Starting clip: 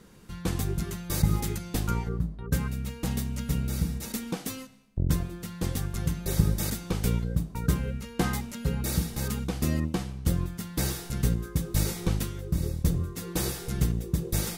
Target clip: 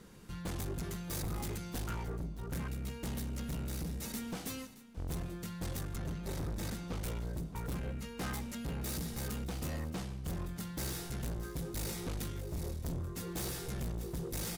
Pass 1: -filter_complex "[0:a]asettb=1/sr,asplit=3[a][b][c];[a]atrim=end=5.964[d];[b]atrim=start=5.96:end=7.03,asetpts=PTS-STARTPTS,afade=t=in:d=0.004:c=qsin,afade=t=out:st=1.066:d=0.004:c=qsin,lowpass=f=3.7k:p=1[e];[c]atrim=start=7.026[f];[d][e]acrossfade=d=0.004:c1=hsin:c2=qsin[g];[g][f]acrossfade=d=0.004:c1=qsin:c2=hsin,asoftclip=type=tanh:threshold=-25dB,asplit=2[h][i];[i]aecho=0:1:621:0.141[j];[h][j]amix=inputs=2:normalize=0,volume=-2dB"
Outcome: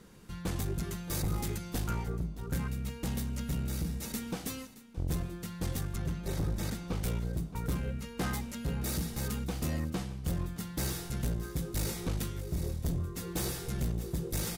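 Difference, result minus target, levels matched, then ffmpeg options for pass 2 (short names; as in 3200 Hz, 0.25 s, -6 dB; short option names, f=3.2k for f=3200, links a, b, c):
soft clip: distortion -5 dB
-filter_complex "[0:a]asettb=1/sr,asplit=3[a][b][c];[a]atrim=end=5.964[d];[b]atrim=start=5.96:end=7.03,asetpts=PTS-STARTPTS,afade=t=in:d=0.004:c=qsin,afade=t=out:st=1.066:d=0.004:c=qsin,lowpass=f=3.7k:p=1[e];[c]atrim=start=7.026[f];[d][e]acrossfade=d=0.004:c1=hsin:c2=qsin[g];[g][f]acrossfade=d=0.004:c1=qsin:c2=hsin,asoftclip=type=tanh:threshold=-33dB,asplit=2[h][i];[i]aecho=0:1:621:0.141[j];[h][j]amix=inputs=2:normalize=0,volume=-2dB"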